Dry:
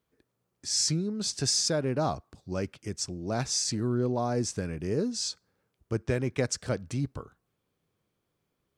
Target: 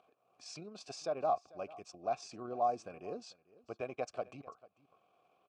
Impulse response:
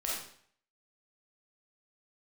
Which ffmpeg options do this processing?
-filter_complex "[0:a]acompressor=mode=upward:threshold=-46dB:ratio=2.5,tremolo=f=45:d=0.261,atempo=1.6,asplit=3[a][b][c];[a]bandpass=f=730:t=q:w=8,volume=0dB[d];[b]bandpass=f=1.09k:t=q:w=8,volume=-6dB[e];[c]bandpass=f=2.44k:t=q:w=8,volume=-9dB[f];[d][e][f]amix=inputs=3:normalize=0,asplit=2[g][h];[h]aecho=0:1:444:0.0891[i];[g][i]amix=inputs=2:normalize=0,volume=6dB"

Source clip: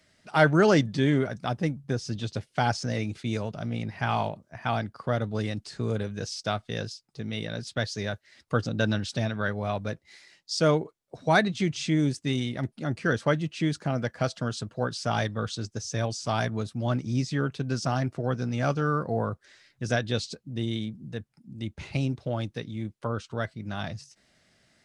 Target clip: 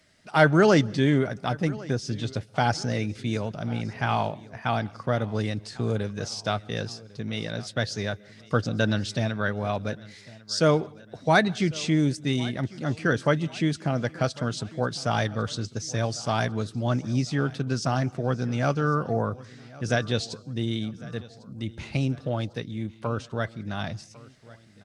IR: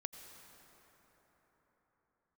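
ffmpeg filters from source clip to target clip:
-filter_complex "[0:a]aecho=1:1:1100|2200|3300:0.0891|0.0419|0.0197,asplit=2[a][b];[1:a]atrim=start_sample=2205,afade=t=out:st=0.19:d=0.01,atrim=end_sample=8820,asetrate=29106,aresample=44100[c];[b][c]afir=irnorm=-1:irlink=0,volume=-11dB[d];[a][d]amix=inputs=2:normalize=0"

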